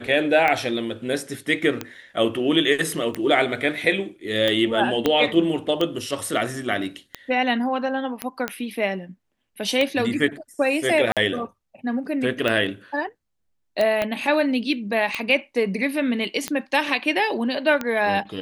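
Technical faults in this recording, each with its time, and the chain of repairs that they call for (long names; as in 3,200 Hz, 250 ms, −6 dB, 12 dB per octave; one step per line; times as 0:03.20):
scratch tick 45 rpm −10 dBFS
0:05.06: click −6 dBFS
0:08.22: click −10 dBFS
0:11.12–0:11.17: drop-out 47 ms
0:14.02: click −10 dBFS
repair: click removal
repair the gap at 0:11.12, 47 ms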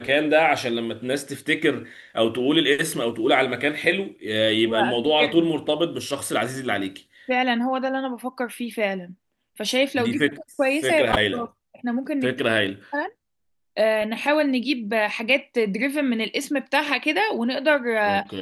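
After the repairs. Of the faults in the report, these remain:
0:05.06: click
0:14.02: click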